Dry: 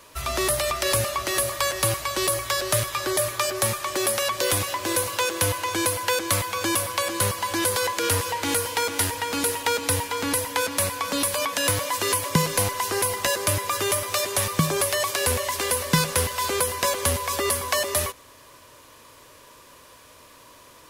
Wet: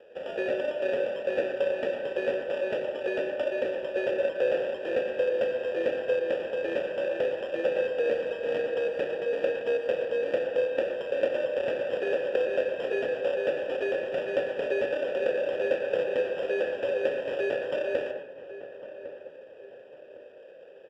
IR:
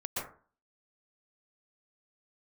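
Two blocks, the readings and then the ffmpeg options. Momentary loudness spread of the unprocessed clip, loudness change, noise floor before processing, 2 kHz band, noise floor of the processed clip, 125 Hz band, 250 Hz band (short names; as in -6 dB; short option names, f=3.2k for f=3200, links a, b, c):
2 LU, -5.5 dB, -50 dBFS, -7.5 dB, -48 dBFS, under -20 dB, -7.5 dB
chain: -filter_complex "[0:a]highpass=f=410:t=q:w=4.9,equalizer=f=14k:w=0.46:g=14,acompressor=threshold=-15dB:ratio=6,acrusher=samples=21:mix=1:aa=0.000001,asplit=3[a][b][c];[a]bandpass=f=530:t=q:w=8,volume=0dB[d];[b]bandpass=f=1.84k:t=q:w=8,volume=-6dB[e];[c]bandpass=f=2.48k:t=q:w=8,volume=-9dB[f];[d][e][f]amix=inputs=3:normalize=0,aemphasis=mode=reproduction:type=50kf,asplit=2[g][h];[h]adelay=1105,lowpass=f=1.6k:p=1,volume=-13dB,asplit=2[i][j];[j]adelay=1105,lowpass=f=1.6k:p=1,volume=0.42,asplit=2[k][l];[l]adelay=1105,lowpass=f=1.6k:p=1,volume=0.42,asplit=2[m][n];[n]adelay=1105,lowpass=f=1.6k:p=1,volume=0.42[o];[g][i][k][m][o]amix=inputs=5:normalize=0,asplit=2[p][q];[1:a]atrim=start_sample=2205,asetrate=66150,aresample=44100,adelay=33[r];[q][r]afir=irnorm=-1:irlink=0,volume=-7.5dB[s];[p][s]amix=inputs=2:normalize=0,volume=1dB"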